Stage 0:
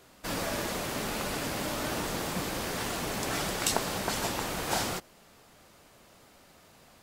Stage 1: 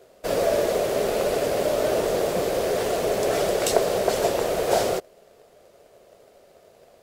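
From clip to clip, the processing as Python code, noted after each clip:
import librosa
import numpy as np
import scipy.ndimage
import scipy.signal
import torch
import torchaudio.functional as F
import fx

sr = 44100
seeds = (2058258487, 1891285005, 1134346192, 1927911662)

y = fx.band_shelf(x, sr, hz=510.0, db=14.5, octaves=1.1)
y = fx.leveller(y, sr, passes=1)
y = y * librosa.db_to_amplitude(-2.0)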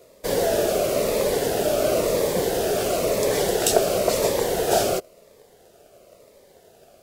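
y = fx.high_shelf(x, sr, hz=8300.0, db=5.0)
y = fx.notch_cascade(y, sr, direction='falling', hz=0.97)
y = y * librosa.db_to_amplitude(3.0)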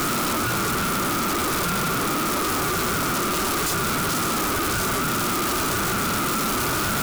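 y = np.sign(x) * np.sqrt(np.mean(np.square(x)))
y = y * np.sin(2.0 * np.pi * 780.0 * np.arange(len(y)) / sr)
y = y * librosa.db_to_amplitude(3.0)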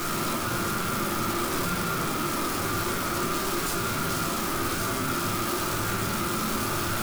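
y = fx.room_shoebox(x, sr, seeds[0], volume_m3=93.0, walls='mixed', distance_m=0.81)
y = y * librosa.db_to_amplitude(-8.0)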